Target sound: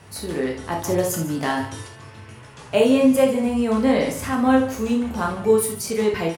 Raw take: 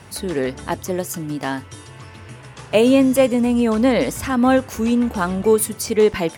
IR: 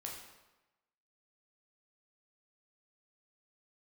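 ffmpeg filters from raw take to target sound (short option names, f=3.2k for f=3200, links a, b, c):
-filter_complex "[0:a]aecho=1:1:145:0.178,asettb=1/sr,asplit=3[a][b][c];[a]atrim=end=0.794[d];[b]atrim=start=0.79:end=1.88,asetpts=PTS-STARTPTS,afade=t=in:d=0.004:c=qsin,afade=t=out:st=1.086:d=0.004:c=qsin,acontrast=38[e];[c]atrim=start=1.876[f];[d][e]acrossfade=d=0.004:c1=hsin:c2=qsin[g];[g][f]acrossfade=d=0.004:c1=qsin:c2=hsin[h];[1:a]atrim=start_sample=2205,atrim=end_sample=3969[i];[h][i]afir=irnorm=-1:irlink=0"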